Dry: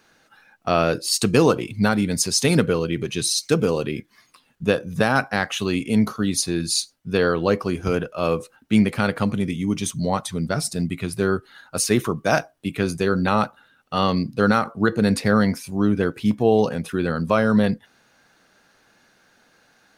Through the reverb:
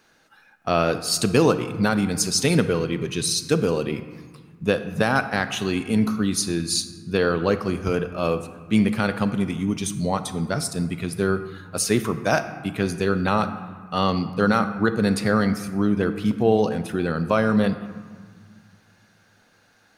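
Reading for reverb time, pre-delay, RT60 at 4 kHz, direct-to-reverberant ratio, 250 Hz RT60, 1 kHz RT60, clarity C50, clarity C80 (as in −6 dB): 1.7 s, 31 ms, 1.0 s, 11.0 dB, 2.4 s, 1.8 s, 11.5 dB, 13.0 dB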